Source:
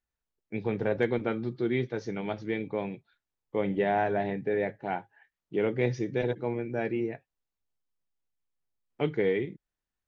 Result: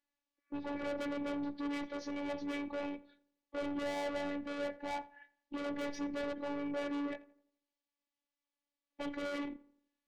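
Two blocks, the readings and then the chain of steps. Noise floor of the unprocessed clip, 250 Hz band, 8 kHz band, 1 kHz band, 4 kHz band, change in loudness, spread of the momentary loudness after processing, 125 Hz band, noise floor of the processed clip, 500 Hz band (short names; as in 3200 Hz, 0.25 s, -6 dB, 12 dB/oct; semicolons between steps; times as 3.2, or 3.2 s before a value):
under -85 dBFS, -6.0 dB, n/a, -8.5 dB, -1.5 dB, -9.0 dB, 8 LU, -23.0 dB, under -85 dBFS, -11.5 dB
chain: spectral repair 0.33–0.84, 1100–2500 Hz both; notch 1400 Hz, Q 5.2; dynamic EQ 800 Hz, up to +4 dB, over -37 dBFS, Q 0.85; in parallel at 0 dB: limiter -26.5 dBFS, peak gain reduction 14 dB; on the sum: BPF 140–5200 Hz; soft clip -31 dBFS, distortion -5 dB; on a send: darkening echo 85 ms, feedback 43%, low-pass 1900 Hz, level -18.5 dB; on the sum: robotiser 286 Hz; gain -1.5 dB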